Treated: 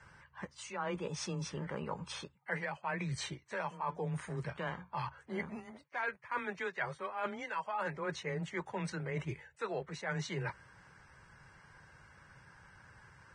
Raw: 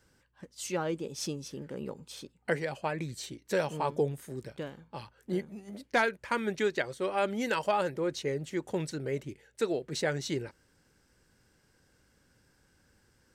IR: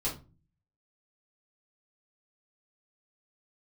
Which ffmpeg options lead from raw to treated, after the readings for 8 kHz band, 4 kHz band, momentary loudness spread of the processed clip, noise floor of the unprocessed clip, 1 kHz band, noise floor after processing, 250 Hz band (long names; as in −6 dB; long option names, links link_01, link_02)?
−6.5 dB, −6.0 dB, 21 LU, −69 dBFS, −4.0 dB, −65 dBFS, −7.0 dB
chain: -af "equalizer=frequency=125:width_type=o:width=1:gain=6,equalizer=frequency=250:width_type=o:width=1:gain=-10,equalizer=frequency=500:width_type=o:width=1:gain=-3,equalizer=frequency=1000:width_type=o:width=1:gain=11,equalizer=frequency=2000:width_type=o:width=1:gain=5,equalizer=frequency=4000:width_type=o:width=1:gain=-4,equalizer=frequency=8000:width_type=o:width=1:gain=-10,areverse,acompressor=threshold=-41dB:ratio=8,areverse,afreqshift=17,volume=5.5dB" -ar 22050 -c:a libvorbis -b:a 16k